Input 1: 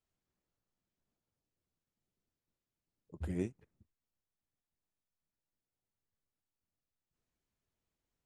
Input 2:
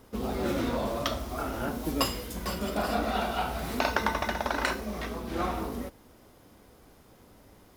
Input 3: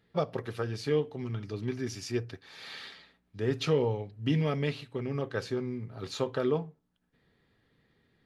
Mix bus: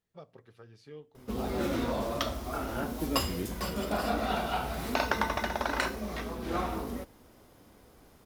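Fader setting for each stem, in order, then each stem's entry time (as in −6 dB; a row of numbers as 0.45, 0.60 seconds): 0.0, −1.5, −19.5 decibels; 0.00, 1.15, 0.00 seconds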